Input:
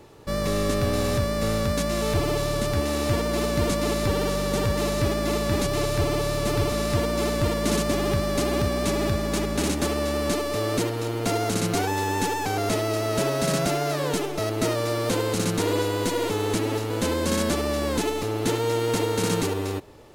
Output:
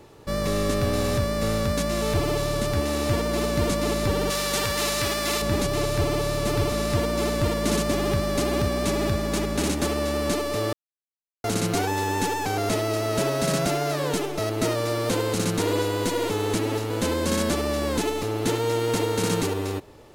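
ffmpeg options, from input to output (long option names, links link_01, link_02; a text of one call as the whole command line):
ffmpeg -i in.wav -filter_complex "[0:a]asettb=1/sr,asplit=3[link_01][link_02][link_03];[link_01]atrim=end=4.304[link_04];[link_02]atrim=start=4.3:end=5.42,asetpts=PTS-STARTPTS,afade=type=in:duration=0.004:curve=qsin,afade=type=out:start_time=1.116:duration=0.004:curve=qsin,tiltshelf=frequency=790:gain=-7.5[link_05];[link_03]atrim=start=5.416[link_06];[link_04][link_05]acrossfade=duration=0.004:curve1=hsin:curve2=qsin[link_07];[link_07][link_06]acrossfade=duration=0.004:curve1=qsin:curve2=hsin,asplit=3[link_08][link_09][link_10];[link_08]atrim=end=10.73,asetpts=PTS-STARTPTS,afade=type=out:start_time=10.726:duration=0.004:curve=hsin[link_11];[link_09]atrim=start=10.73:end=11.44,asetpts=PTS-STARTPTS,volume=0[link_12];[link_10]atrim=start=11.44,asetpts=PTS-STARTPTS,afade=type=in:duration=0.004:curve=hsin[link_13];[link_11][link_12][link_13]concat=n=3:v=0:a=1" out.wav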